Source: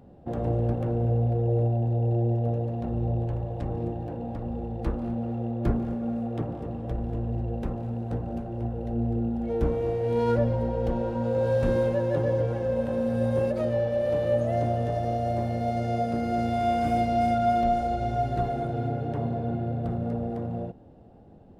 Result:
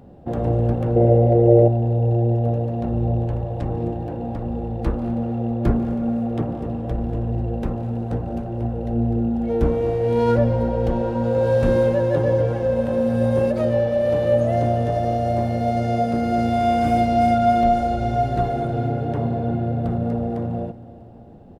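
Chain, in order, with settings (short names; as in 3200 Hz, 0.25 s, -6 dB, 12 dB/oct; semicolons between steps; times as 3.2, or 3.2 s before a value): 0.96–1.68 small resonant body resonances 400/570/2000 Hz, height 14 dB, ringing for 30 ms; on a send: feedback echo 0.322 s, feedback 53%, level -19 dB; on the sum: gain +6 dB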